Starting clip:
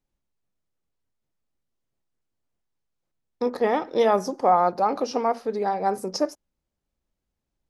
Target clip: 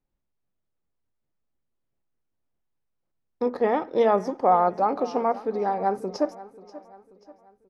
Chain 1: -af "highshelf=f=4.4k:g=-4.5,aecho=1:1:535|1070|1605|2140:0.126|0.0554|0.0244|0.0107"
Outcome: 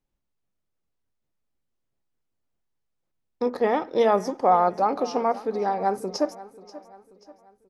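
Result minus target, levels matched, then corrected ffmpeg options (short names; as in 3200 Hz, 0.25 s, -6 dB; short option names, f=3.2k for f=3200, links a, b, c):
8000 Hz band +7.5 dB
-af "highshelf=f=4.4k:g=-16.5,aecho=1:1:535|1070|1605|2140:0.126|0.0554|0.0244|0.0107"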